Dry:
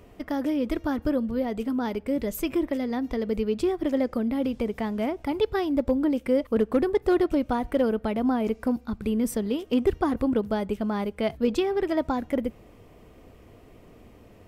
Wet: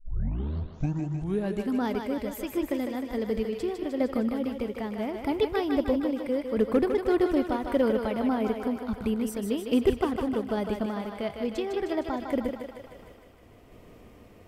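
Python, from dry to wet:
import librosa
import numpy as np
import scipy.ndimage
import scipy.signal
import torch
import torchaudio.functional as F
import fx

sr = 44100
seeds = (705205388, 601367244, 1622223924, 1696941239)

y = fx.tape_start_head(x, sr, length_s=1.73)
y = fx.tremolo_random(y, sr, seeds[0], hz=3.5, depth_pct=55)
y = fx.echo_thinned(y, sr, ms=154, feedback_pct=68, hz=380.0, wet_db=-5.0)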